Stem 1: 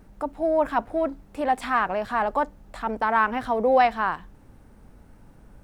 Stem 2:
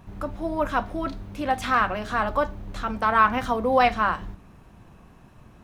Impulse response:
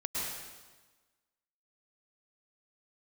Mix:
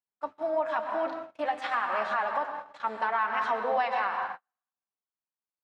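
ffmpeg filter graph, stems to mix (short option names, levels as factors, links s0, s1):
-filter_complex "[0:a]bandreject=f=65.84:t=h:w=4,bandreject=f=131.68:t=h:w=4,bandreject=f=197.52:t=h:w=4,bandreject=f=263.36:t=h:w=4,bandreject=f=329.2:t=h:w=4,flanger=delay=8.6:depth=1.6:regen=46:speed=1.1:shape=sinusoidal,bass=f=250:g=14,treble=f=4000:g=-1,volume=1,asplit=3[s0][s1][s2];[s1]volume=0.596[s3];[1:a]volume=1.12[s4];[s2]apad=whole_len=248283[s5];[s4][s5]sidechaincompress=threshold=0.02:ratio=12:attack=28:release=188[s6];[2:a]atrim=start_sample=2205[s7];[s3][s7]afir=irnorm=-1:irlink=0[s8];[s0][s6][s8]amix=inputs=3:normalize=0,agate=range=0.00398:threshold=0.0562:ratio=16:detection=peak,highpass=780,lowpass=4800,alimiter=limit=0.126:level=0:latency=1:release=221"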